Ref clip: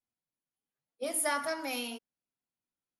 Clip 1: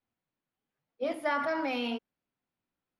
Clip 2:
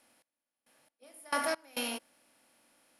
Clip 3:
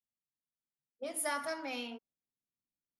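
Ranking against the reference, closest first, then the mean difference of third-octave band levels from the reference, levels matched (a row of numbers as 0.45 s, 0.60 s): 3, 1, 2; 2.5 dB, 6.0 dB, 10.0 dB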